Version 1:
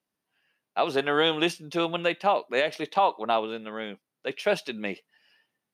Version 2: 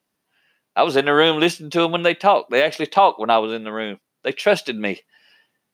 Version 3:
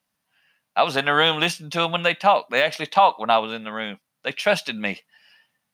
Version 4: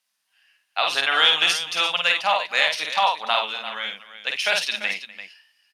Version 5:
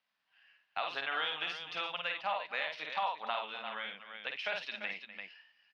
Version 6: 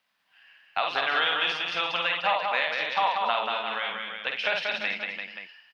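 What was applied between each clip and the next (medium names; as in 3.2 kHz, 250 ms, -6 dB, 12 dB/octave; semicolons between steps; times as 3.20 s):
de-esser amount 70%; trim +8.5 dB
peaking EQ 370 Hz -14.5 dB 0.72 oct
band-pass filter 5.4 kHz, Q 0.52; multi-tap echo 51/249/343 ms -3.5/-19/-12 dB; trim +4.5 dB
compression 2:1, threshold -39 dBFS, peak gain reduction 14.5 dB; distance through air 310 m
delay 186 ms -4 dB; trim +9 dB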